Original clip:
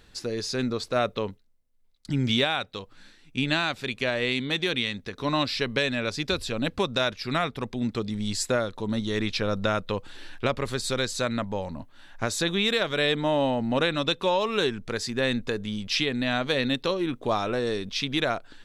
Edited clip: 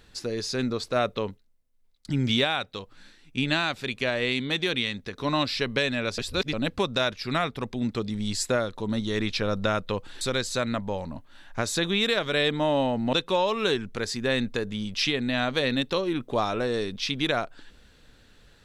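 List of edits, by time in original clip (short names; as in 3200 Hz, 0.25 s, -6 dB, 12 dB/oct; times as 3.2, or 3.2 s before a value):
6.18–6.53 reverse
10.21–10.85 cut
13.77–14.06 cut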